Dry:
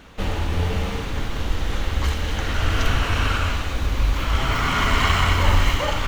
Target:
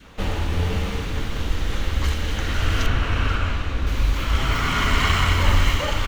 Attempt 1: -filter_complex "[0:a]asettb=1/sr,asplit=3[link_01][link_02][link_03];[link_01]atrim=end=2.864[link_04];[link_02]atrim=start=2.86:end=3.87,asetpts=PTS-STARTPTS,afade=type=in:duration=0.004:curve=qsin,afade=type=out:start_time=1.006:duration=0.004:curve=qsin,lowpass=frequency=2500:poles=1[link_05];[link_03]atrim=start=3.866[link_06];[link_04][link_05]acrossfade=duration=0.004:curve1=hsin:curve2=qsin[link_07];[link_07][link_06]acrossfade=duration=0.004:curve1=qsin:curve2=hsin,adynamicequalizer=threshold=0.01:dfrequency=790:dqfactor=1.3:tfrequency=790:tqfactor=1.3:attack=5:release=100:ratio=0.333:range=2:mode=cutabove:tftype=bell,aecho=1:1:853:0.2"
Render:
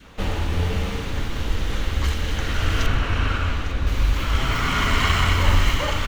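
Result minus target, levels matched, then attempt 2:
echo 370 ms late
-filter_complex "[0:a]asettb=1/sr,asplit=3[link_01][link_02][link_03];[link_01]atrim=end=2.864[link_04];[link_02]atrim=start=2.86:end=3.87,asetpts=PTS-STARTPTS,afade=type=in:duration=0.004:curve=qsin,afade=type=out:start_time=1.006:duration=0.004:curve=qsin,lowpass=frequency=2500:poles=1[link_05];[link_03]atrim=start=3.866[link_06];[link_04][link_05]acrossfade=duration=0.004:curve1=hsin:curve2=qsin[link_07];[link_07][link_06]acrossfade=duration=0.004:curve1=qsin:curve2=hsin,adynamicequalizer=threshold=0.01:dfrequency=790:dqfactor=1.3:tfrequency=790:tqfactor=1.3:attack=5:release=100:ratio=0.333:range=2:mode=cutabove:tftype=bell,aecho=1:1:483:0.2"

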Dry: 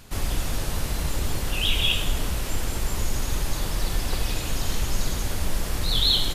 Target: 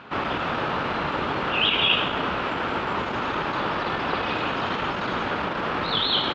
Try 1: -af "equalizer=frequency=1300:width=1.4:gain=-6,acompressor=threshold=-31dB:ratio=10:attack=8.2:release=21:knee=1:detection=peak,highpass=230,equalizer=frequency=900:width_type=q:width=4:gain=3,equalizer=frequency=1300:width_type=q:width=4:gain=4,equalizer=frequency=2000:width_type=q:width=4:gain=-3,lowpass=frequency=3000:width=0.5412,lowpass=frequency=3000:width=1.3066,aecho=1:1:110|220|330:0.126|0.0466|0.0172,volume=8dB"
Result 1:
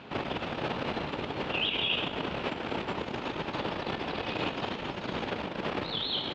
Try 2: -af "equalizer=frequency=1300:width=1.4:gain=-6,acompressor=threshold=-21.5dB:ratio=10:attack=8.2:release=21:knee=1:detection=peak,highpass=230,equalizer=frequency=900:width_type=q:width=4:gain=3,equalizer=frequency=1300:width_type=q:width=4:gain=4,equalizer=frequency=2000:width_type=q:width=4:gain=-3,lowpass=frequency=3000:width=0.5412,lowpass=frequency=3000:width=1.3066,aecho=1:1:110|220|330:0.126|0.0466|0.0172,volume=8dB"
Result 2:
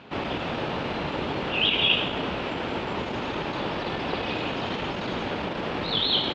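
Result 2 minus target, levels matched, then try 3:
1,000 Hz band −3.5 dB
-af "equalizer=frequency=1300:width=1.4:gain=4,acompressor=threshold=-21.5dB:ratio=10:attack=8.2:release=21:knee=1:detection=peak,highpass=230,equalizer=frequency=900:width_type=q:width=4:gain=3,equalizer=frequency=1300:width_type=q:width=4:gain=4,equalizer=frequency=2000:width_type=q:width=4:gain=-3,lowpass=frequency=3000:width=0.5412,lowpass=frequency=3000:width=1.3066,aecho=1:1:110|220|330:0.126|0.0466|0.0172,volume=8dB"

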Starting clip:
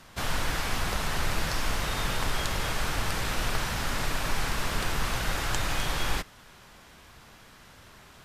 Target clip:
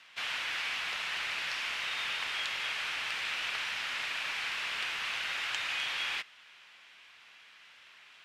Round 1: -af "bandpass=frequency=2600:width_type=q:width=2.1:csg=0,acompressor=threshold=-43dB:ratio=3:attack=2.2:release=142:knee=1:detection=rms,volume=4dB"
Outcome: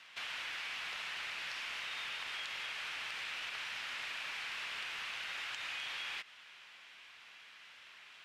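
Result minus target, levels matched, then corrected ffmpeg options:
downward compressor: peak gain reduction +11 dB
-af "bandpass=frequency=2600:width_type=q:width=2.1:csg=0,volume=4dB"

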